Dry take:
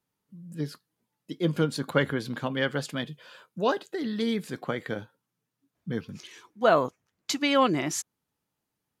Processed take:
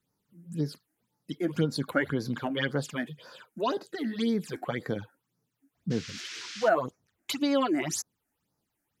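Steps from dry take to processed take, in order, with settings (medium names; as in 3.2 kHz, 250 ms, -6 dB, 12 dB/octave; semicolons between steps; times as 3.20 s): phase shifter stages 8, 1.9 Hz, lowest notch 130–3100 Hz; 5.90–6.68 s: band noise 1.4–6.1 kHz -46 dBFS; compression 1.5:1, threshold -36 dBFS, peak gain reduction 7 dB; trim +4.5 dB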